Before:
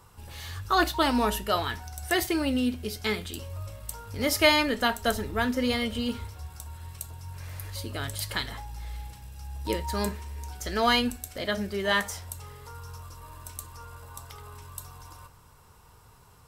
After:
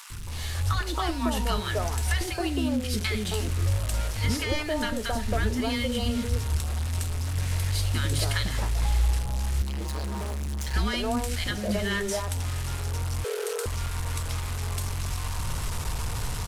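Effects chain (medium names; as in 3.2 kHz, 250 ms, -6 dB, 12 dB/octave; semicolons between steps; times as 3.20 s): one-bit delta coder 64 kbps, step -35 dBFS; compression 6:1, threshold -31 dBFS, peak gain reduction 14 dB; bass shelf 65 Hz +11 dB; three bands offset in time highs, lows, mids 100/270 ms, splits 350/1100 Hz; level rider gain up to 7 dB; added noise white -68 dBFS; 13.24–13.66 s: frequency shift +380 Hz; bass shelf 140 Hz +3 dB; 9.62–10.74 s: hard clipper -29 dBFS, distortion -13 dB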